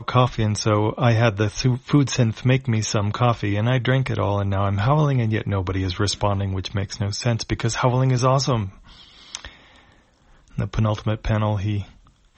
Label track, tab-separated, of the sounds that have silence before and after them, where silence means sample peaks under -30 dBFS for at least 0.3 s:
9.350000	9.470000	sound
10.580000	11.830000	sound